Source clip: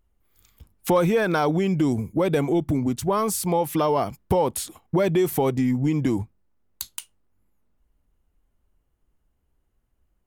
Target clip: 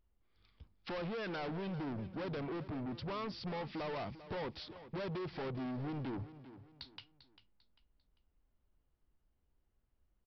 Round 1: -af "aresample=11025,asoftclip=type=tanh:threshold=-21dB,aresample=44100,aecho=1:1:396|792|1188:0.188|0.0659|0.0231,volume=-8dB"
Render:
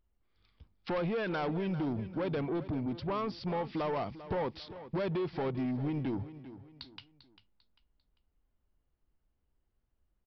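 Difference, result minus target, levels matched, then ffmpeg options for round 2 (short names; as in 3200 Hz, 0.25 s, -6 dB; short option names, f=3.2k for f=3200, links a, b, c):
soft clip: distortion -6 dB
-af "aresample=11025,asoftclip=type=tanh:threshold=-30.5dB,aresample=44100,aecho=1:1:396|792|1188:0.188|0.0659|0.0231,volume=-8dB"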